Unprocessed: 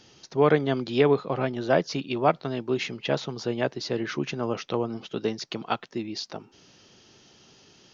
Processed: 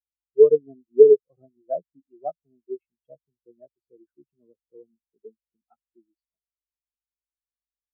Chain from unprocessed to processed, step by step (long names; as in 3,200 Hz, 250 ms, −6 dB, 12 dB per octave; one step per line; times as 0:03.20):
mains hum 50 Hz, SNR 16 dB
every bin expanded away from the loudest bin 4 to 1
level +5 dB